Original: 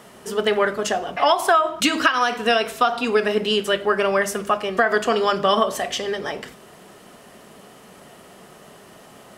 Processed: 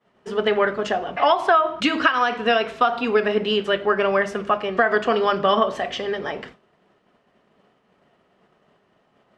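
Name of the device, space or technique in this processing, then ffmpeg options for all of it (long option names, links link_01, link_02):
hearing-loss simulation: -af "lowpass=3200,agate=range=-33dB:threshold=-35dB:ratio=3:detection=peak"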